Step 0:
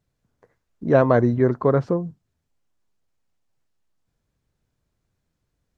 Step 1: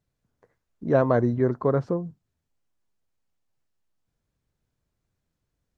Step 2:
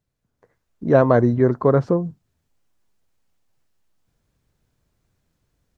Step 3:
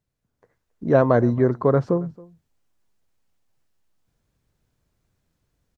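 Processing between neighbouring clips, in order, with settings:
dynamic equaliser 2,600 Hz, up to −4 dB, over −40 dBFS, Q 1.2; level −4 dB
automatic gain control gain up to 9 dB
single-tap delay 273 ms −23 dB; level −2 dB

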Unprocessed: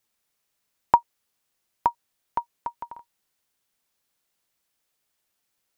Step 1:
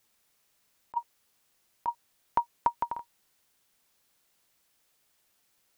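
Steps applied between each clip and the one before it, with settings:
compressor whose output falls as the input rises −25 dBFS, ratio −0.5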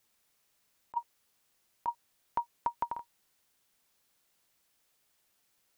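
brickwall limiter −17 dBFS, peak gain reduction 4.5 dB
level −2.5 dB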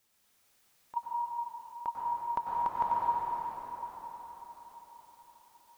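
dense smooth reverb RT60 5 s, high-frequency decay 0.85×, pre-delay 85 ms, DRR −5.5 dB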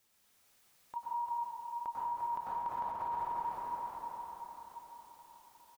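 brickwall limiter −31 dBFS, peak gain reduction 11.5 dB
single-tap delay 348 ms −8 dB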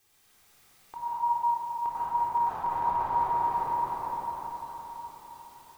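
rectangular room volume 2,800 cubic metres, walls mixed, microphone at 3.7 metres
level +3.5 dB

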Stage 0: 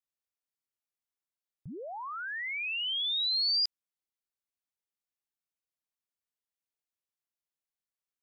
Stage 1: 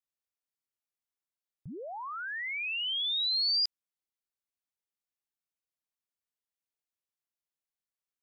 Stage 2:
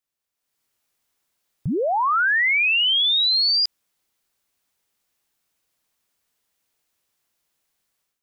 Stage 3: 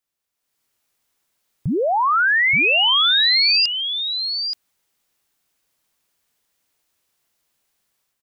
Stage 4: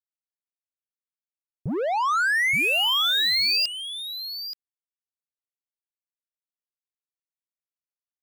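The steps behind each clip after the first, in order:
no processing that can be heard
automatic gain control gain up to 12 dB; brickwall limiter −23 dBFS, peak gain reduction 11.5 dB; level +7 dB
single-tap delay 877 ms −7.5 dB; level +2.5 dB
power curve on the samples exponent 2; soft clipping −20.5 dBFS, distortion −10 dB; level +2.5 dB

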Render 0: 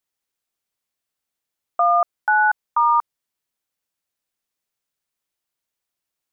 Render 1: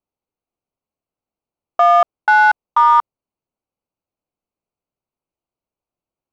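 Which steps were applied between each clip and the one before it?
adaptive Wiener filter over 25 samples
level +6 dB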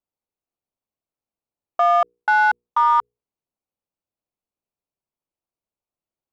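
mains-hum notches 60/120/180/240/300/360/420/480 Hz
level −5 dB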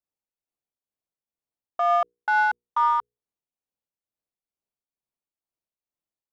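shaped tremolo triangle 2.2 Hz, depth 55%
level −3.5 dB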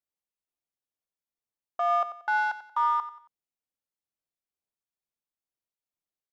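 repeating echo 91 ms, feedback 35%, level −13 dB
level −4 dB

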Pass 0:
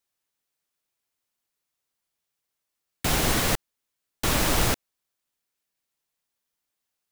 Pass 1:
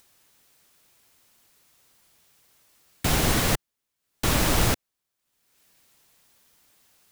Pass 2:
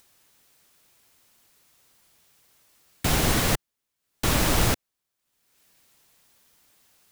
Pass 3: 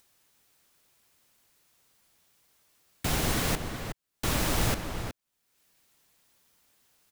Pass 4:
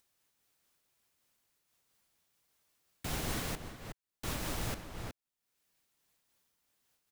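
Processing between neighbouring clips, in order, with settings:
parametric band 100 Hz +3.5 dB 2.7 octaves; upward compression, threshold −44 dBFS
no processing that can be heard
slap from a distant wall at 63 metres, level −7 dB; level −5.5 dB
amplitude modulation by smooth noise, depth 60%; level −6.5 dB

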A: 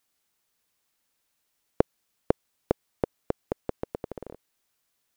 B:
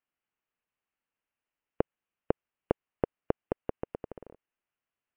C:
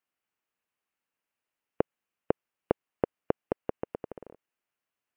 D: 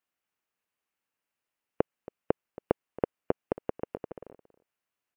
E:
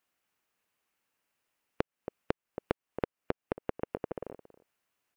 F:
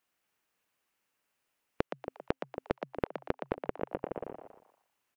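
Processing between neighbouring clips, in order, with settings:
elliptic low-pass filter 2,900 Hz; brickwall limiter −10 dBFS, peak gain reduction 7 dB; expander for the loud parts 1.5 to 1, over −47 dBFS; level +1.5 dB
low-shelf EQ 82 Hz −11 dB; level +2 dB
single-tap delay 276 ms −18.5 dB
downward compressor, threshold −35 dBFS, peak gain reduction 15 dB; level +6 dB
echo with shifted repeats 118 ms, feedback 36%, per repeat +130 Hz, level −8 dB

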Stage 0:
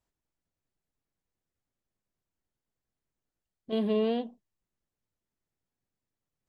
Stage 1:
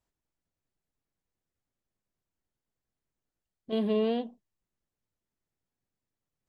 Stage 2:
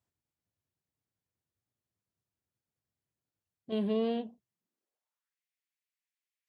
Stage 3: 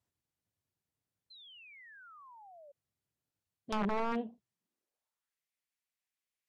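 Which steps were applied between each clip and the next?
no processing that can be heard
high-pass filter sweep 95 Hz → 2,200 Hz, 0:04.40–0:05.39; tape wow and flutter 65 cents; level −4 dB
wrap-around overflow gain 26 dB; treble cut that deepens with the level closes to 1,700 Hz, closed at −29 dBFS; sound drawn into the spectrogram fall, 0:01.30–0:02.72, 550–4,200 Hz −55 dBFS

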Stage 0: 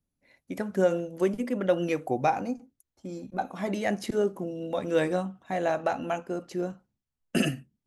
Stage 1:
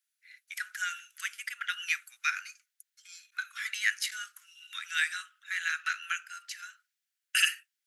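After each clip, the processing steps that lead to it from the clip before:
Butterworth high-pass 1,400 Hz 72 dB per octave
level +8 dB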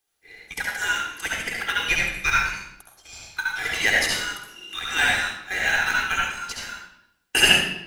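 in parallel at −10 dB: decimation without filtering 18×
on the sum: convolution reverb RT60 0.75 s, pre-delay 51 ms, DRR −3 dB
level +4 dB

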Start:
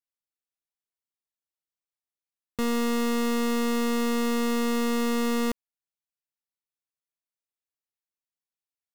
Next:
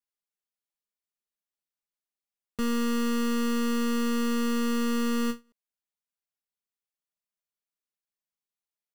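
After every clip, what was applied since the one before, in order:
comb filter 4.9 ms, depth 92%
every ending faded ahead of time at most 300 dB per second
level −5 dB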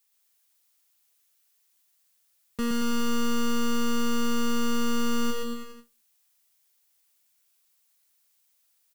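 background noise blue −71 dBFS
bouncing-ball delay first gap 120 ms, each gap 0.9×, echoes 5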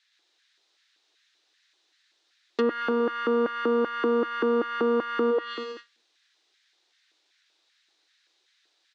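auto-filter high-pass square 2.6 Hz 370–1,700 Hz
loudspeaker in its box 250–5,400 Hz, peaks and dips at 320 Hz +10 dB, 730 Hz +4 dB, 1,700 Hz +3 dB, 3,800 Hz +8 dB
treble cut that deepens with the level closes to 1,000 Hz, closed at −26.5 dBFS
level +6.5 dB

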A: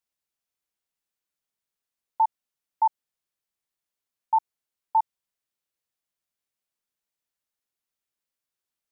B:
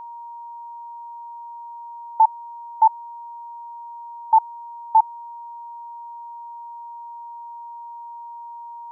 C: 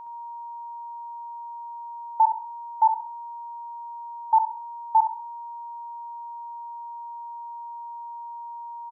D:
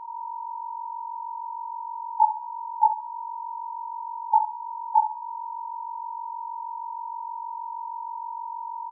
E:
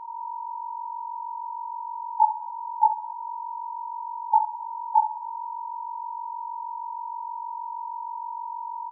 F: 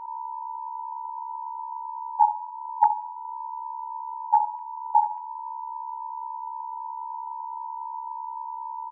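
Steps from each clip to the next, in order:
steady tone 940 Hz −41 dBFS; level +7 dB
repeating echo 66 ms, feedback 30%, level −8.5 dB; level −4 dB
three sine waves on the formant tracks
convolution reverb RT60 0.75 s, pre-delay 108 ms, DRR 17 dB
three sine waves on the formant tracks

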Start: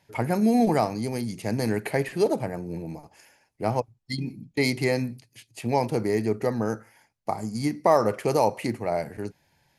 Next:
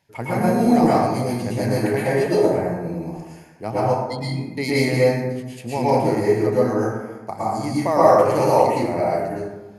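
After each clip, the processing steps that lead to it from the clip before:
dense smooth reverb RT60 1.2 s, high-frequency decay 0.45×, pre-delay 100 ms, DRR −8.5 dB
level −3 dB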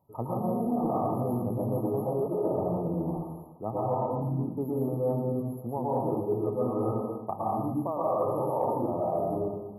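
brick-wall band-stop 1,300–11,000 Hz
reversed playback
downward compressor 6 to 1, threshold −26 dBFS, peak gain reduction 16.5 dB
reversed playback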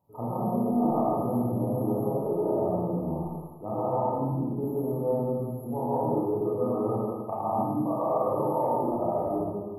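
four-comb reverb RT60 0.73 s, combs from 26 ms, DRR −5 dB
level −4 dB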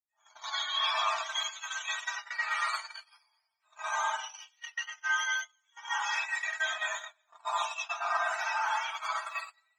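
frequency axis turned over on the octave scale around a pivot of 890 Hz
noise gate −32 dBFS, range −32 dB

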